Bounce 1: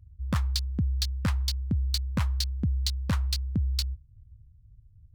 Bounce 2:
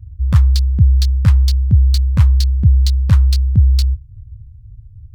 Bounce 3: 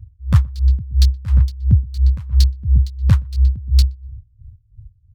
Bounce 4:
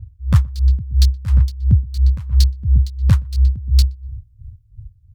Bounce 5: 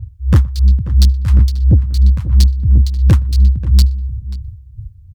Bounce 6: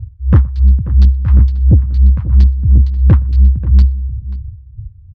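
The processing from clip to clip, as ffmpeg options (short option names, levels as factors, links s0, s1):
-af "lowshelf=f=170:t=q:w=1.5:g=11,volume=1.68"
-filter_complex "[0:a]asplit=2[s0][s1];[s1]adelay=122,lowpass=f=910:p=1,volume=0.398,asplit=2[s2][s3];[s3]adelay=122,lowpass=f=910:p=1,volume=0.25,asplit=2[s4][s5];[s5]adelay=122,lowpass=f=910:p=1,volume=0.25[s6];[s0][s2][s4][s6]amix=inputs=4:normalize=0,aeval=exprs='val(0)*pow(10,-23*(0.5-0.5*cos(2*PI*2.9*n/s))/20)':c=same"
-filter_complex "[0:a]asplit=2[s0][s1];[s1]acompressor=threshold=0.0708:ratio=6,volume=0.794[s2];[s0][s2]amix=inputs=2:normalize=0,adynamicequalizer=threshold=0.00891:dfrequency=5100:dqfactor=0.7:tfrequency=5100:tqfactor=0.7:attack=5:release=100:ratio=0.375:range=2.5:mode=boostabove:tftype=highshelf,volume=0.841"
-filter_complex "[0:a]highpass=f=44:p=1,asoftclip=type=tanh:threshold=0.282,asplit=2[s0][s1];[s1]adelay=536.4,volume=0.178,highshelf=f=4000:g=-12.1[s2];[s0][s2]amix=inputs=2:normalize=0,volume=2.51"
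-af "lowpass=1700,volume=1.19"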